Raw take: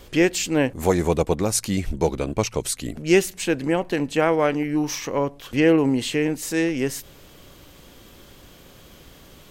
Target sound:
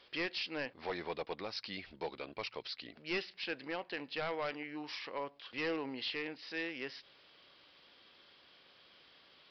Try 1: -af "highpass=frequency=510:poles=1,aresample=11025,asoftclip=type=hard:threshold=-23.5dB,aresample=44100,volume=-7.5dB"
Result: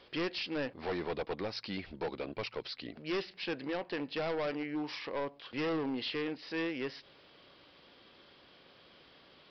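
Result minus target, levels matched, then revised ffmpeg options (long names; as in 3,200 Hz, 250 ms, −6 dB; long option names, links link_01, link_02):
2,000 Hz band −3.5 dB
-af "highpass=frequency=1600:poles=1,aresample=11025,asoftclip=type=hard:threshold=-23.5dB,aresample=44100,volume=-7.5dB"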